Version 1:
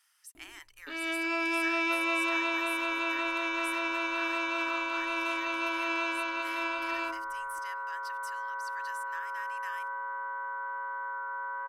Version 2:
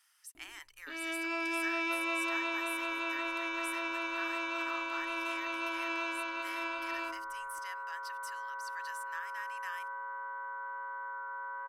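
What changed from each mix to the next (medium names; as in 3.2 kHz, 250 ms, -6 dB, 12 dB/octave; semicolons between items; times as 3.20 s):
first sound -4.5 dB; second sound -4.5 dB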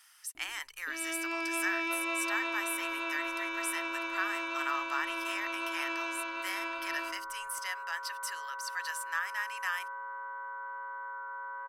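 speech +9.5 dB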